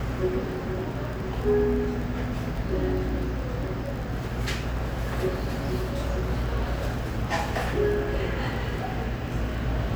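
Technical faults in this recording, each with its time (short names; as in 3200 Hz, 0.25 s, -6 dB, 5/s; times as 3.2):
crackle 20/s -33 dBFS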